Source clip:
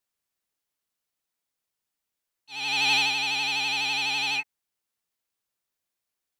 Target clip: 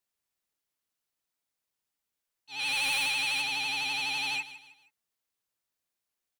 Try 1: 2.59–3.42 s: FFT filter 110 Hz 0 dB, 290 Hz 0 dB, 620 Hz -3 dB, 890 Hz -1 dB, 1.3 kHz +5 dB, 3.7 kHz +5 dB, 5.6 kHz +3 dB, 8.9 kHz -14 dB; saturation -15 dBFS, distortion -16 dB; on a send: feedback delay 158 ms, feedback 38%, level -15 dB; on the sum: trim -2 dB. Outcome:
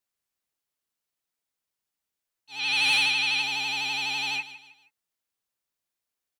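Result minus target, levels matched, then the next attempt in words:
saturation: distortion -9 dB
2.59–3.42 s: FFT filter 110 Hz 0 dB, 290 Hz 0 dB, 620 Hz -3 dB, 890 Hz -1 dB, 1.3 kHz +5 dB, 3.7 kHz +5 dB, 5.6 kHz +3 dB, 8.9 kHz -14 dB; saturation -25.5 dBFS, distortion -7 dB; on a send: feedback delay 158 ms, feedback 38%, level -15 dB; on the sum: trim -2 dB

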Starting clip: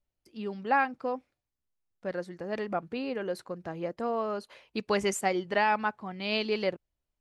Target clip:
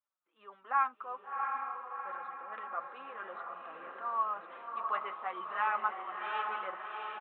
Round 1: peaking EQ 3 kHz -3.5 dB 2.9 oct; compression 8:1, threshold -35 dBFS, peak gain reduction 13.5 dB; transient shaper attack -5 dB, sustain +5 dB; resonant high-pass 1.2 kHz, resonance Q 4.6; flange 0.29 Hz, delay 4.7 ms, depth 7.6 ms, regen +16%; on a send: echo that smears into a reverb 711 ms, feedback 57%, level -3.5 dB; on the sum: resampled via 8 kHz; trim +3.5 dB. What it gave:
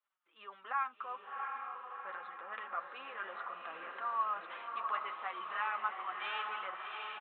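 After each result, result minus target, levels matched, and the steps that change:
compression: peak gain reduction +13.5 dB; 4 kHz band +7.5 dB
remove: compression 8:1, threshold -35 dBFS, peak gain reduction 13.5 dB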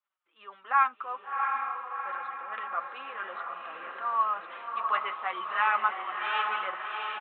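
4 kHz band +5.5 dB
change: peaking EQ 3 kHz -15 dB 2.9 oct

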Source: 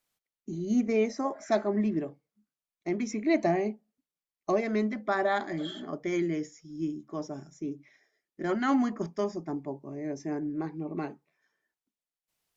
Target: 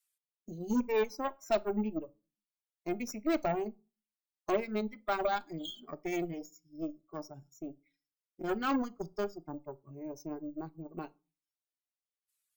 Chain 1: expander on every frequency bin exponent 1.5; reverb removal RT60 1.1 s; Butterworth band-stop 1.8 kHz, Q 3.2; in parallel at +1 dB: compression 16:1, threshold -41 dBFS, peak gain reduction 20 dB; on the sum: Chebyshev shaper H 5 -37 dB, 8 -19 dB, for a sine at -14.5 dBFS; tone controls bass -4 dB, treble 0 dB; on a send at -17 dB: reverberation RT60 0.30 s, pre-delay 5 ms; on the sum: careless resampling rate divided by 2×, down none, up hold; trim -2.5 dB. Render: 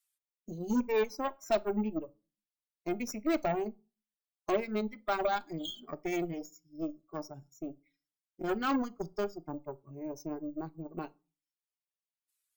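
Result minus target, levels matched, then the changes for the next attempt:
compression: peak gain reduction -6.5 dB
change: compression 16:1, threshold -48 dBFS, peak gain reduction 26.5 dB

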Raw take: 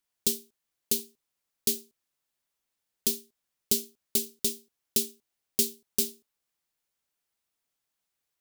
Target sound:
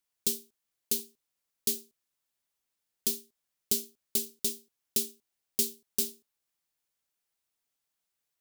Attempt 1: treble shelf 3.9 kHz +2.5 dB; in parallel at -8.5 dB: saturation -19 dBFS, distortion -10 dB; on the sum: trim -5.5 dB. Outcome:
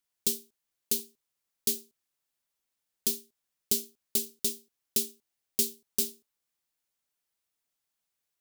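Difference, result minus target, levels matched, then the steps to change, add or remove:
saturation: distortion -6 dB
change: saturation -28.5 dBFS, distortion -4 dB

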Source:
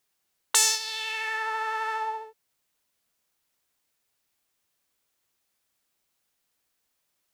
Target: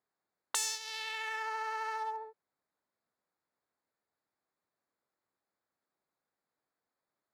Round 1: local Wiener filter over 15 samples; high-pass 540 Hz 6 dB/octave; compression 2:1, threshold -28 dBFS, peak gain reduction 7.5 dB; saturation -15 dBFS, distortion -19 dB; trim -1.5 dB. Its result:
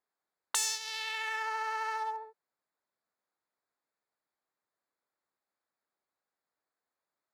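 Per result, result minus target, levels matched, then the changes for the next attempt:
250 Hz band -3.5 dB; compression: peak gain reduction -3.5 dB
change: high-pass 210 Hz 6 dB/octave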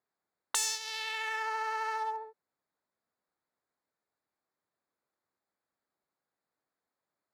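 compression: peak gain reduction -3 dB
change: compression 2:1, threshold -34.5 dBFS, peak gain reduction 10.5 dB

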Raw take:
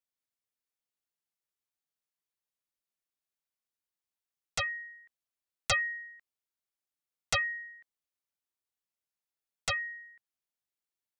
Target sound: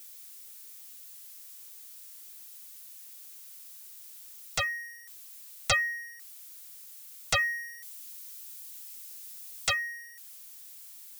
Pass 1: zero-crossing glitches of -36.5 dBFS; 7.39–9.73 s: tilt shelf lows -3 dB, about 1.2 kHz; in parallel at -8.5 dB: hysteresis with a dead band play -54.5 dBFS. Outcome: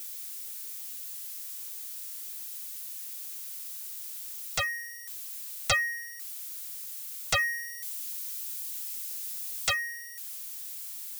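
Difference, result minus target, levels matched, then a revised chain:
zero-crossing glitches: distortion +8 dB
zero-crossing glitches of -44.5 dBFS; 7.39–9.73 s: tilt shelf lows -3 dB, about 1.2 kHz; in parallel at -8.5 dB: hysteresis with a dead band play -54.5 dBFS

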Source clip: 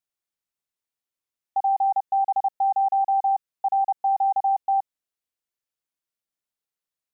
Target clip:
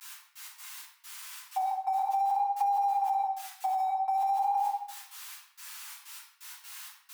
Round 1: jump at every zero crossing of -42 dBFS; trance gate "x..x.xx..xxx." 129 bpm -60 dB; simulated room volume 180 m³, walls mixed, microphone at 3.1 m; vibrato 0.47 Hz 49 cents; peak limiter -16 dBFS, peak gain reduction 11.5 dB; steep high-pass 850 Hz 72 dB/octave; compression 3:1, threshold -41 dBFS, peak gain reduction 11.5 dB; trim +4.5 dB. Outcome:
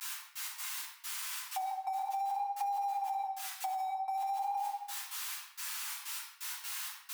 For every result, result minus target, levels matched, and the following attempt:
compression: peak gain reduction +7 dB; jump at every zero crossing: distortion +7 dB
jump at every zero crossing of -42 dBFS; trance gate "x..x.xx..xxx." 129 bpm -60 dB; simulated room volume 180 m³, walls mixed, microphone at 3.1 m; vibrato 0.47 Hz 49 cents; peak limiter -16 dBFS, peak gain reduction 11.5 dB; steep high-pass 850 Hz 72 dB/octave; compression 3:1, threshold -30.5 dBFS, peak gain reduction 4.5 dB; trim +4.5 dB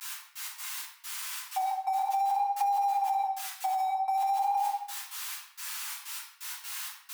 jump at every zero crossing: distortion +7 dB
jump at every zero crossing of -49 dBFS; trance gate "x..x.xx..xxx." 129 bpm -60 dB; simulated room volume 180 m³, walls mixed, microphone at 3.1 m; vibrato 0.47 Hz 49 cents; peak limiter -16 dBFS, peak gain reduction 11 dB; steep high-pass 850 Hz 72 dB/octave; compression 3:1, threshold -30.5 dBFS, peak gain reduction 4.5 dB; trim +4.5 dB

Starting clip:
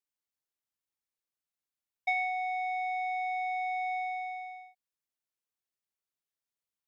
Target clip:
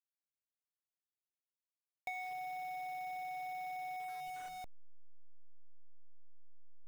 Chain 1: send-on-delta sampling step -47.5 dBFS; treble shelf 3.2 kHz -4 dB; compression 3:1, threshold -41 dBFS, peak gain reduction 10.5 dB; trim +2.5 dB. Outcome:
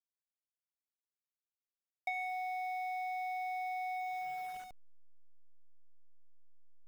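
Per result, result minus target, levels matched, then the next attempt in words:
send-on-delta sampling: distortion -9 dB; compression: peak gain reduction -4.5 dB
send-on-delta sampling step -39.5 dBFS; treble shelf 3.2 kHz -4 dB; compression 3:1, threshold -41 dBFS, peak gain reduction 10.5 dB; trim +2.5 dB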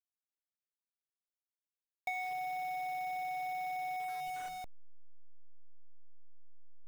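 compression: peak gain reduction -4.5 dB
send-on-delta sampling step -39.5 dBFS; treble shelf 3.2 kHz -4 dB; compression 3:1, threshold -48 dBFS, peak gain reduction 15 dB; trim +2.5 dB

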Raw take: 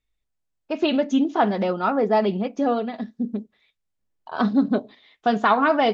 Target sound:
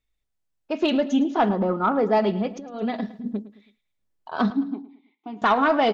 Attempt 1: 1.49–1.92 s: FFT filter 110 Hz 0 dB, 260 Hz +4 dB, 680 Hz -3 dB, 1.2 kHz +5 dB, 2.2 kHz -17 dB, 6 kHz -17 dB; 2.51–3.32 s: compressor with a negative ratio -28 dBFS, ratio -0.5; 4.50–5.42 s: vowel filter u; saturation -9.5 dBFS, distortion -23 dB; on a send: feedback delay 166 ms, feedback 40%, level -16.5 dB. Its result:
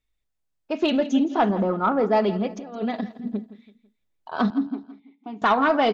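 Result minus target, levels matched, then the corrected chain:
echo 58 ms late
1.49–1.92 s: FFT filter 110 Hz 0 dB, 260 Hz +4 dB, 680 Hz -3 dB, 1.2 kHz +5 dB, 2.2 kHz -17 dB, 6 kHz -17 dB; 2.51–3.32 s: compressor with a negative ratio -28 dBFS, ratio -0.5; 4.50–5.42 s: vowel filter u; saturation -9.5 dBFS, distortion -23 dB; on a send: feedback delay 108 ms, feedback 40%, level -16.5 dB

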